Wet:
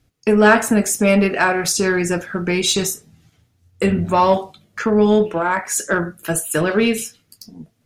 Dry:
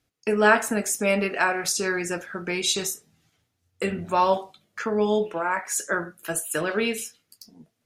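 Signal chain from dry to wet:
low-shelf EQ 230 Hz +12 dB
in parallel at −4 dB: soft clipping −18 dBFS, distortion −10 dB
on the sum: level +2 dB

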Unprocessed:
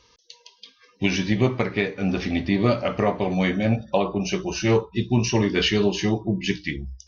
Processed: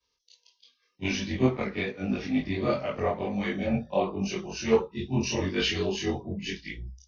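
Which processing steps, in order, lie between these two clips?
every overlapping window played backwards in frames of 62 ms
multi-voice chorus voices 6, 1.1 Hz, delay 21 ms, depth 3.2 ms
multiband upward and downward expander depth 40%

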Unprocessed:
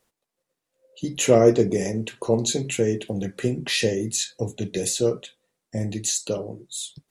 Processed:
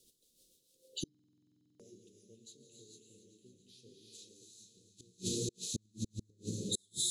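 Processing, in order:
0:04.46–0:06.61: drawn EQ curve 140 Hz 0 dB, 210 Hz −1 dB, 1,600 Hz −29 dB
reverb whose tail is shaped and stops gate 480 ms rising, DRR −1 dB
rotating-speaker cabinet horn 6.7 Hz, later 0.75 Hz, at 0:02.94
delay with a high-pass on its return 279 ms, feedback 68%, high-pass 1,600 Hz, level −12 dB
gate with flip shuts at −23 dBFS, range −41 dB
low-shelf EQ 470 Hz −11 dB
downward compressor 2 to 1, threshold −48 dBFS, peak gain reduction 8 dB
Chebyshev band-stop filter 410–3,600 Hz, order 3
buffer that repeats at 0:01.10, samples 2,048, times 14
level +12 dB

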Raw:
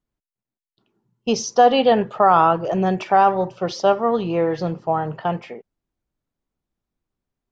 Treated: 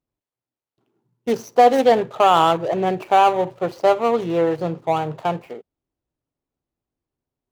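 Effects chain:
running median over 25 samples
high-pass filter 91 Hz 6 dB per octave
parametric band 200 Hz −13 dB 0.21 octaves
level +2 dB

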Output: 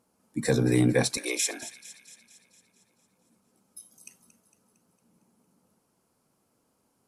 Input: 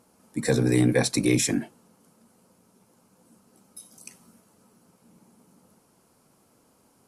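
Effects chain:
noise reduction from a noise print of the clip's start 8 dB
0:01.17–0:01.63: high-pass filter 470 Hz 24 dB per octave
delay with a high-pass on its return 228 ms, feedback 57%, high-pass 1,800 Hz, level −14 dB
level −1.5 dB

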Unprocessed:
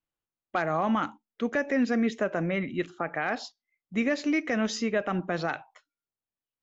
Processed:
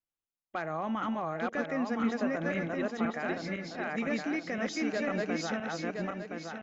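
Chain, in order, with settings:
feedback delay that plays each chunk backwards 509 ms, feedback 58%, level 0 dB
level −7.5 dB

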